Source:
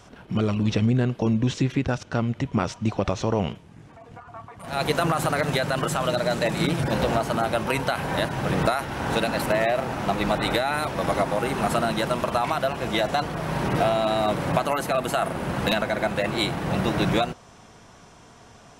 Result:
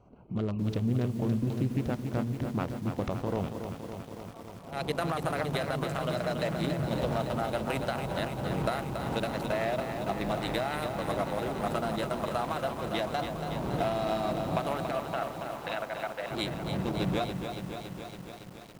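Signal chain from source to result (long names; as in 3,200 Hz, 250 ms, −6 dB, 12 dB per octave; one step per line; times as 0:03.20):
adaptive Wiener filter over 25 samples
0:14.91–0:16.31: band-pass filter 590–2,900 Hz
feedback echo at a low word length 281 ms, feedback 80%, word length 7 bits, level −7 dB
level −7.5 dB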